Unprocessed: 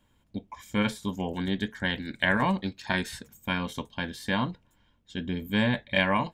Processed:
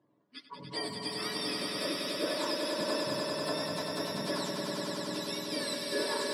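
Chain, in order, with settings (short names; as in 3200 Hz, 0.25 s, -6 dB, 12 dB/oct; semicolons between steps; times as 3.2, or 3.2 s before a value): spectrum mirrored in octaves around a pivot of 990 Hz; HPF 160 Hz 24 dB/oct; compressor 2:1, threshold -40 dBFS, peak gain reduction 11.5 dB; swelling echo 98 ms, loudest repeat 5, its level -5 dB; low-pass opened by the level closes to 1500 Hz, open at -33 dBFS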